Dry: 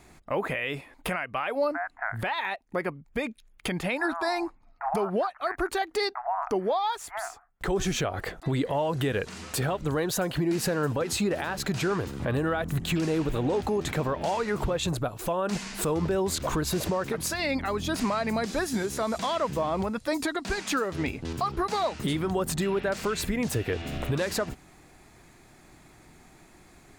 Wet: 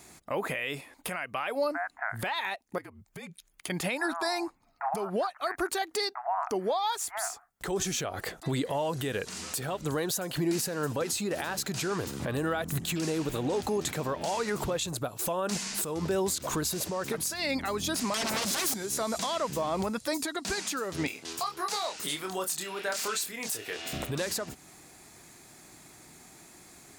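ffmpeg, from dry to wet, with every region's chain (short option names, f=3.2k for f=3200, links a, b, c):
-filter_complex "[0:a]asettb=1/sr,asplit=3[a][b][c];[a]atrim=end=2.784[d];[b]atrim=start=2.78:end=3.7,asetpts=PTS-STARTPTS,afade=t=in:d=0.004:c=qsin,afade=t=out:st=0.916:d=0.004:c=qsin,bandreject=f=570:w=11,afreqshift=-54,acompressor=threshold=-39dB:ratio=8:attack=3.2:release=140:knee=1:detection=peak[e];[c]atrim=start=3.696[f];[d][e]acrossfade=d=0.004:c1=hsin:c2=qsin[g];[g][f]acrossfade=d=0.004:c1=qsin:c2=hsin,asettb=1/sr,asplit=3[h][i][j];[h]atrim=end=18.144[k];[i]atrim=start=18.14:end=18.74,asetpts=PTS-STARTPTS,afade=t=in:d=0.004:c=qsin,afade=t=out:st=0.596:d=0.004:c=qsin,acompressor=threshold=-31dB:ratio=4:attack=3.2:release=140:knee=1:detection=peak,aeval=exprs='0.0944*sin(PI/2*6.31*val(0)/0.0944)':c=same[l];[j]atrim=start=18.736[m];[k][l]acrossfade=d=0.004:c1=hsin:c2=qsin[n];[n][m]acrossfade=d=0.004:c1=qsin:c2=hsin,asettb=1/sr,asplit=3[o][p][q];[o]atrim=end=21.074[r];[p]atrim=start=21.07:end=23.93,asetpts=PTS-STARTPTS,afade=t=in:d=0.004:c=qsin,afade=t=out:st=2.856:d=0.004:c=qsin,highpass=f=940:p=1,asplit=2[s][t];[t]adelay=27,volume=-5.5dB[u];[s][u]amix=inputs=2:normalize=0,atrim=end_sample=126126[v];[q]atrim=start=23.926[w];[r][v]acrossfade=d=0.004:c1=hsin:c2=qsin[x];[x][w]acrossfade=d=0.004:c1=qsin:c2=hsin,highpass=f=180:p=1,bass=f=250:g=2,treble=f=4k:g=10,alimiter=limit=-20.5dB:level=0:latency=1:release=325"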